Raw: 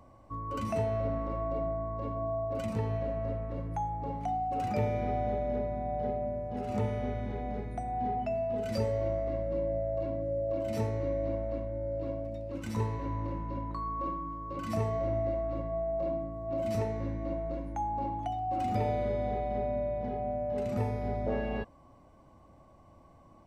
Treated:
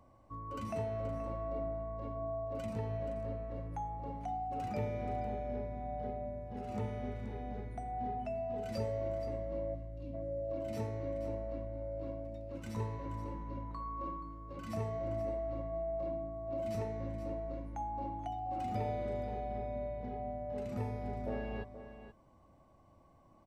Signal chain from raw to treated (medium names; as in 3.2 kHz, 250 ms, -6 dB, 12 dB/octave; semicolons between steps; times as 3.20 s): spectral selection erased 9.75–10.14 s, 330–2300 Hz; on a send: delay 477 ms -12 dB; on the sum: trim -6.5 dB